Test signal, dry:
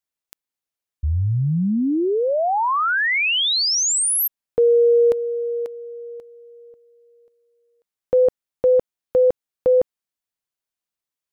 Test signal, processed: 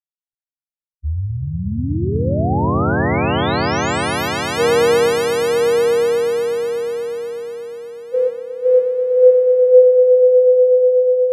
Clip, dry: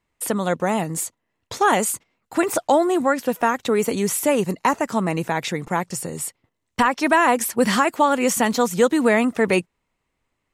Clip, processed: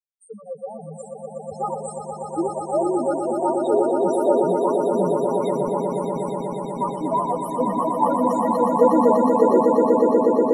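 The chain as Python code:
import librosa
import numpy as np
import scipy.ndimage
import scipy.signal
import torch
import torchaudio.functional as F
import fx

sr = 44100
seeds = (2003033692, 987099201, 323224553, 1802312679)

p1 = fx.noise_reduce_blind(x, sr, reduce_db=15)
p2 = fx.high_shelf(p1, sr, hz=3700.0, db=-6.5)
p3 = fx.spec_topn(p2, sr, count=2)
p4 = p3 + fx.echo_swell(p3, sr, ms=121, loudest=8, wet_db=-6.0, dry=0)
y = fx.band_widen(p4, sr, depth_pct=70)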